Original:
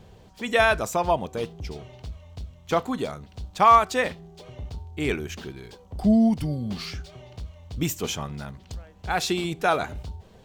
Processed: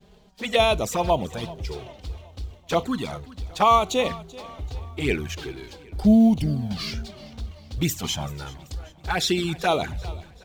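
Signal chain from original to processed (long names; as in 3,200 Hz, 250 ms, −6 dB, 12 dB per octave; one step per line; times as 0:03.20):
mu-law and A-law mismatch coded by mu
parametric band 3,900 Hz +3.5 dB 0.89 octaves
downward expander −37 dBFS
flanger swept by the level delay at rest 5.2 ms, full sweep at −18.5 dBFS
on a send: repeating echo 385 ms, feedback 46%, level −19.5 dB
on the sum: level +3 dB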